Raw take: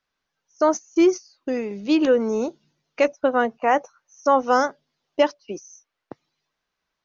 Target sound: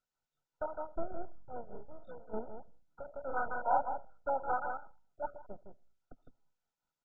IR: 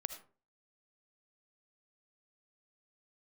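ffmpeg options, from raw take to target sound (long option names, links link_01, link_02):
-filter_complex "[0:a]equalizer=frequency=125:width_type=o:width=1:gain=9,equalizer=frequency=250:width_type=o:width=1:gain=-11,equalizer=frequency=500:width_type=o:width=1:gain=-6,equalizer=frequency=2000:width_type=o:width=1:gain=-6,asplit=2[link_01][link_02];[link_02]adelay=157.4,volume=-9dB,highshelf=frequency=4000:gain=-3.54[link_03];[link_01][link_03]amix=inputs=2:normalize=0,acrossover=split=450|2200[link_04][link_05][link_06];[link_04]aeval=exprs='abs(val(0))':channel_layout=same[link_07];[link_07][link_05][link_06]amix=inputs=3:normalize=0,highshelf=frequency=4300:gain=5.5,tremolo=f=5.1:d=0.88,asplit=3[link_08][link_09][link_10];[link_08]afade=type=out:start_time=1.85:duration=0.02[link_11];[link_09]acompressor=threshold=-43dB:ratio=5,afade=type=in:start_time=1.85:duration=0.02,afade=type=out:start_time=2.32:duration=0.02[link_12];[link_10]afade=type=in:start_time=2.32:duration=0.02[link_13];[link_11][link_12][link_13]amix=inputs=3:normalize=0,asplit=2[link_14][link_15];[1:a]atrim=start_sample=2205[link_16];[link_15][link_16]afir=irnorm=-1:irlink=0,volume=-12dB[link_17];[link_14][link_17]amix=inputs=2:normalize=0,asoftclip=type=tanh:threshold=-19dB,asplit=3[link_18][link_19][link_20];[link_18]afade=type=out:start_time=0.72:duration=0.02[link_21];[link_19]adynamicsmooth=sensitivity=1:basefreq=3800,afade=type=in:start_time=0.72:duration=0.02,afade=type=out:start_time=1.14:duration=0.02[link_22];[link_20]afade=type=in:start_time=1.14:duration=0.02[link_23];[link_21][link_22][link_23]amix=inputs=3:normalize=0,asettb=1/sr,asplit=3[link_24][link_25][link_26];[link_24]atrim=end=3.254[link_27];[link_25]atrim=start=3.25:end=4.3,asetpts=PTS-STARTPTS,afade=type=in:duration=0.004:curve=qsin,afade=type=out:start_time=1.046:duration=0.004:curve=qsin,asplit=2[link_28][link_29];[link_29]adelay=41,volume=-2dB[link_30];[link_28][link_30]amix=inputs=2:normalize=0,atrim=end_sample=46305[link_31];[link_26]atrim=start=4.296[link_32];[link_27][link_31]acrossfade=duration=0.004:curve1=hsin:curve2=qsin[link_33];[link_33][link_32]acrossfade=duration=0.004:curve1=qsin:curve2=hsin,flanger=delay=1.4:depth=8:regen=86:speed=0.33:shape=sinusoidal" -ar 16000 -c:a mp2 -b:a 8k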